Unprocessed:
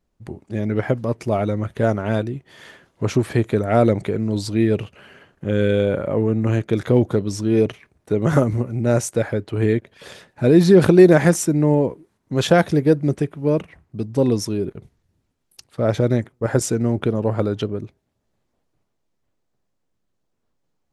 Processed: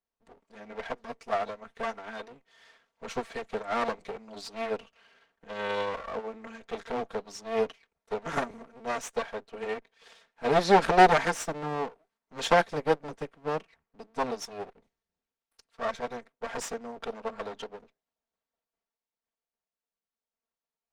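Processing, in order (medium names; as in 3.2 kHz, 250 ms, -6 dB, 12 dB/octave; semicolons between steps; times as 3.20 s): comb filter that takes the minimum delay 4.4 ms; three-band isolator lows -13 dB, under 470 Hz, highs -14 dB, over 7.9 kHz; upward expansion 1.5:1, over -42 dBFS; trim +1.5 dB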